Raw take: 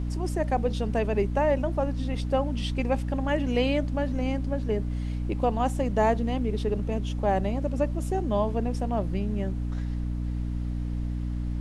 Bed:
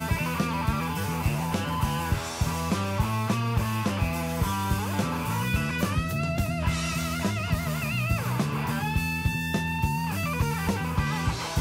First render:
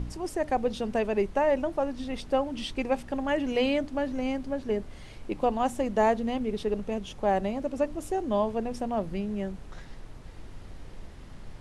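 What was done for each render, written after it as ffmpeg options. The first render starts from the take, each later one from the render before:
-af "bandreject=f=60:t=h:w=4,bandreject=f=120:t=h:w=4,bandreject=f=180:t=h:w=4,bandreject=f=240:t=h:w=4,bandreject=f=300:t=h:w=4"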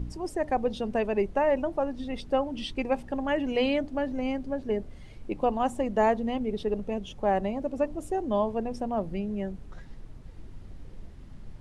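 -af "afftdn=nr=8:nf=-45"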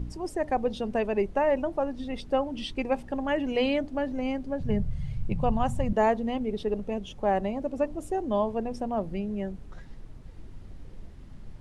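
-filter_complex "[0:a]asettb=1/sr,asplit=3[s0][s1][s2];[s0]atrim=end=4.604[s3];[s1]atrim=start=4.6:end=5.93,asetpts=PTS-STARTPTS,afade=t=in:d=0.004:c=qsin,afade=t=out:st=1.326:d=0.004:c=qsin,lowshelf=f=210:t=q:w=3:g=12.5[s4];[s2]atrim=start=5.926[s5];[s3][s4]acrossfade=d=0.004:c1=hsin:c2=qsin[s6];[s6][s5]acrossfade=d=0.004:c1=qsin:c2=hsin"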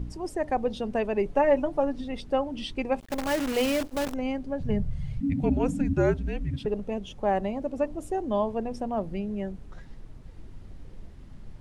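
-filter_complex "[0:a]asettb=1/sr,asplit=3[s0][s1][s2];[s0]atrim=end=1.254[s3];[s1]atrim=start=1.25:end=2.01,asetpts=PTS-STARTPTS,afade=t=in:d=0.004:c=qsin,afade=t=out:st=0.756:d=0.004:c=qsin,aecho=1:1:7:0.67,atrim=end_sample=33516[s4];[s2]atrim=start=2.006[s5];[s3][s4]acrossfade=d=0.004:c1=hsin:c2=qsin[s6];[s6][s5]acrossfade=d=0.004:c1=qsin:c2=hsin,asettb=1/sr,asplit=3[s7][s8][s9];[s7]atrim=end=3.004[s10];[s8]atrim=start=3:end=4.14,asetpts=PTS-STARTPTS,afade=t=in:d=0.004:c=qsin,afade=t=out:st=1.136:d=0.004:c=qsin,acrusher=bits=6:dc=4:mix=0:aa=0.000001[s11];[s9]atrim=start=4.136[s12];[s10][s11]acrossfade=d=0.004:c1=hsin:c2=qsin[s13];[s13][s12]acrossfade=d=0.004:c1=qsin:c2=hsin,asettb=1/sr,asplit=3[s14][s15][s16];[s14]atrim=end=5.204[s17];[s15]atrim=start=5.2:end=6.66,asetpts=PTS-STARTPTS,afade=t=in:d=0.004:c=qsin,afade=t=out:st=1.456:d=0.004:c=qsin,afreqshift=-290[s18];[s16]atrim=start=6.656[s19];[s17][s18]acrossfade=d=0.004:c1=hsin:c2=qsin[s20];[s20][s19]acrossfade=d=0.004:c1=qsin:c2=hsin"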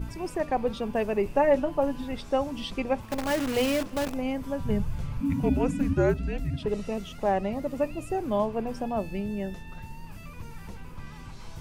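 -filter_complex "[1:a]volume=0.126[s0];[0:a][s0]amix=inputs=2:normalize=0"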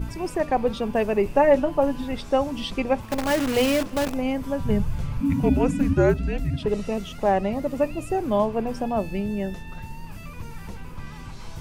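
-af "volume=1.68"

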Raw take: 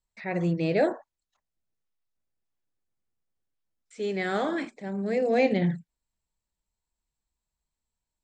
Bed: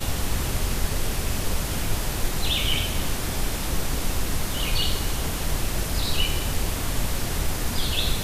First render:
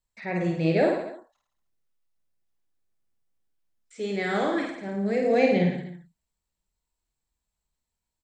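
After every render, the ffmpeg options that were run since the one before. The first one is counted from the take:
-af "aecho=1:1:50|105|165.5|232|305.3:0.631|0.398|0.251|0.158|0.1"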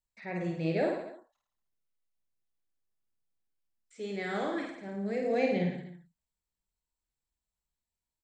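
-af "volume=0.422"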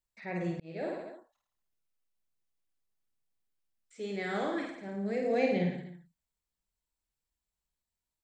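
-filter_complex "[0:a]asplit=2[s0][s1];[s0]atrim=end=0.6,asetpts=PTS-STARTPTS,afade=t=out:st=0.596:d=0.004:c=hsin[s2];[s1]atrim=start=0.6,asetpts=PTS-STARTPTS,afade=t=in:d=0.55[s3];[s2][s3]concat=n=2:v=0:a=1"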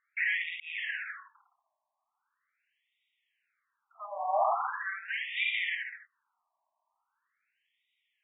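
-filter_complex "[0:a]asplit=2[s0][s1];[s1]highpass=f=720:p=1,volume=31.6,asoftclip=type=tanh:threshold=0.178[s2];[s0][s2]amix=inputs=2:normalize=0,lowpass=f=3700:p=1,volume=0.501,afftfilt=real='re*between(b*sr/1024,810*pow(2700/810,0.5+0.5*sin(2*PI*0.41*pts/sr))/1.41,810*pow(2700/810,0.5+0.5*sin(2*PI*0.41*pts/sr))*1.41)':imag='im*between(b*sr/1024,810*pow(2700/810,0.5+0.5*sin(2*PI*0.41*pts/sr))/1.41,810*pow(2700/810,0.5+0.5*sin(2*PI*0.41*pts/sr))*1.41)':win_size=1024:overlap=0.75"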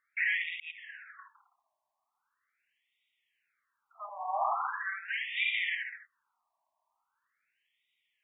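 -filter_complex "[0:a]asettb=1/sr,asplit=3[s0][s1][s2];[s0]atrim=end=0.714[s3];[s1]atrim=start=0.71:end=1.19,asetpts=PTS-STARTPTS,afade=t=in:d=0.004:c=qsin,afade=t=out:st=0.476:d=0.004:c=qsin,equalizer=f=2600:w=0.56:g=-14.5[s4];[s2]atrim=start=1.186[s5];[s3][s4]acrossfade=d=0.004:c1=hsin:c2=qsin[s6];[s6][s5]acrossfade=d=0.004:c1=qsin:c2=hsin,asettb=1/sr,asplit=3[s7][s8][s9];[s7]atrim=end=4.094[s10];[s8]atrim=start=4.09:end=5.37,asetpts=PTS-STARTPTS,afade=t=in:d=0.004:c=qsin,afade=t=out:st=1.276:d=0.004:c=qsin,highpass=f=800:w=0.5412,highpass=f=800:w=1.3066[s11];[s9]atrim=start=5.366[s12];[s10][s11]acrossfade=d=0.004:c1=hsin:c2=qsin[s13];[s13][s12]acrossfade=d=0.004:c1=qsin:c2=hsin"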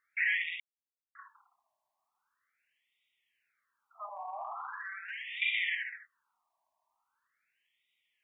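-filter_complex "[0:a]asettb=1/sr,asplit=3[s0][s1][s2];[s0]atrim=end=4.094[s3];[s1]atrim=start=4.09:end=5.42,asetpts=PTS-STARTPTS,afade=t=in:d=0.004:c=qsin,afade=t=out:st=1.326:d=0.004:c=qsin,acompressor=threshold=0.0126:ratio=5:attack=3.2:release=140:knee=1:detection=peak[s4];[s2]atrim=start=5.416[s5];[s3][s4]acrossfade=d=0.004:c1=hsin:c2=qsin[s6];[s6][s5]acrossfade=d=0.004:c1=qsin:c2=hsin,asplit=3[s7][s8][s9];[s7]atrim=end=0.6,asetpts=PTS-STARTPTS,afade=t=out:st=0.596:d=0.004:c=hsin[s10];[s8]atrim=start=0.6:end=1.15,asetpts=PTS-STARTPTS,volume=0[s11];[s9]atrim=start=1.15,asetpts=PTS-STARTPTS,afade=t=in:d=0.004:c=hsin[s12];[s10][s11][s12]concat=n=3:v=0:a=1"

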